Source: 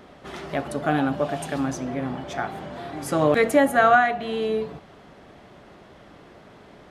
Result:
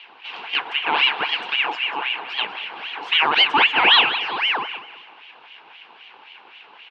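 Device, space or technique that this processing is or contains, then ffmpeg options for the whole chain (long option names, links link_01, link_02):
voice changer toy: -filter_complex "[0:a]asettb=1/sr,asplit=3[link_01][link_02][link_03];[link_01]atrim=end=0.924[link_04];[link_02]atrim=start=0.92:end=1.41,asetpts=PTS-STARTPTS,afade=type=in:duration=0.004:curve=qsin,afade=type=out:start_time=0.486:duration=0.004:curve=qsin,equalizer=frequency=2400:width_type=o:width=0.67:gain=10[link_05];[link_03]atrim=start=1.406[link_06];[link_04][link_05]acrossfade=duration=0.004:curve1=hsin:curve2=qsin[link_07];[link_07][link_06]acrossfade=duration=0.004:curve1=qsin:curve2=hsin,aeval=exprs='val(0)*sin(2*PI*1600*n/s+1600*0.65/3.8*sin(2*PI*3.8*n/s))':channel_layout=same,highpass=540,equalizer=frequency=580:width_type=q:width=4:gain=-10,equalizer=frequency=870:width_type=q:width=4:gain=4,equalizer=frequency=1300:width_type=q:width=4:gain=-7,equalizer=frequency=1900:width_type=q:width=4:gain=-8,equalizer=frequency=2800:width_type=q:width=4:gain=6,lowpass=frequency=3600:width=0.5412,lowpass=frequency=3600:width=1.3066,aecho=1:1:192|384|576:0.2|0.0678|0.0231,volume=7dB"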